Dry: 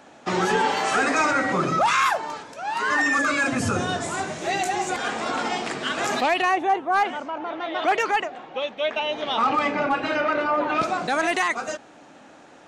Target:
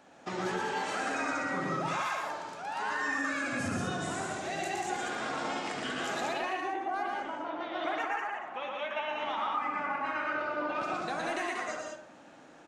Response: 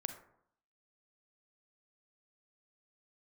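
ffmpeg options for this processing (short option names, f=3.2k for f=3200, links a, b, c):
-filter_complex "[0:a]asettb=1/sr,asplit=3[a][b][c];[a]atrim=end=7.864[d];[b]atrim=start=7.86:end=10.26,asetpts=PTS-STARTPTS,afade=t=in:d=0.004:c=qsin,afade=t=out:st=2.396:d=0.004:c=qsin,equalizer=f=125:t=o:w=1:g=-4,equalizer=f=500:t=o:w=1:g=-6,equalizer=f=1k:t=o:w=1:g=9,equalizer=f=2k:t=o:w=1:g=6,equalizer=f=4k:t=o:w=1:g=-7[e];[c]atrim=start=10.256[f];[d][e]acrossfade=d=0.004:c1=hsin:c2=qsin[g];[g][f]acrossfade=d=0.004:c1=qsin:c2=hsin,acompressor=threshold=-24dB:ratio=6,aecho=1:1:116.6|189.5:0.708|0.631[h];[1:a]atrim=start_sample=2205[i];[h][i]afir=irnorm=-1:irlink=0,volume=-8dB"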